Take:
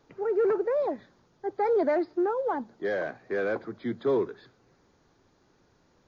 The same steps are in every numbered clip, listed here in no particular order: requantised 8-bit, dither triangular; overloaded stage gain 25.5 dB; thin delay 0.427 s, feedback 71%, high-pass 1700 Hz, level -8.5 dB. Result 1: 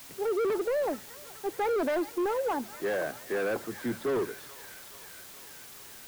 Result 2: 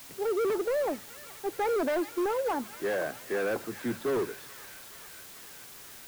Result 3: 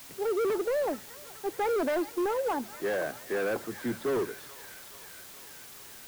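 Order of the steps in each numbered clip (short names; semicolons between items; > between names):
thin delay > requantised > overloaded stage; overloaded stage > thin delay > requantised; thin delay > overloaded stage > requantised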